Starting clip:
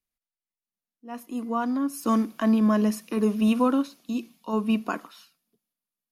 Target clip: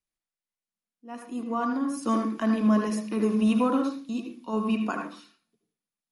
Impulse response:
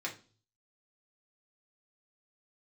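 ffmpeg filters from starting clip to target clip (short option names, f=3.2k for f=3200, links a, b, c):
-filter_complex "[0:a]asplit=2[a][b];[1:a]atrim=start_sample=2205,highshelf=f=3.9k:g=-11.5,adelay=75[c];[b][c]afir=irnorm=-1:irlink=0,volume=-3.5dB[d];[a][d]amix=inputs=2:normalize=0,volume=-2dB" -ar 48000 -c:a libmp3lame -b:a 48k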